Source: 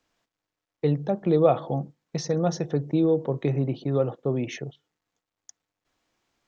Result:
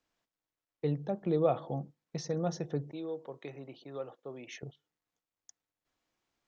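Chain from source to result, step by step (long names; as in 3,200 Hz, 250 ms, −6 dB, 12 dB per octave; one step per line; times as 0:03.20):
0:02.92–0:04.63: high-pass filter 1,000 Hz 6 dB per octave
level −8.5 dB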